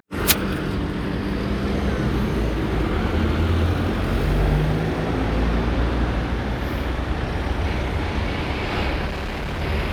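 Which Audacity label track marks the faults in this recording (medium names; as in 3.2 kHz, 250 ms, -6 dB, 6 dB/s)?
9.060000	9.620000	clipped -24 dBFS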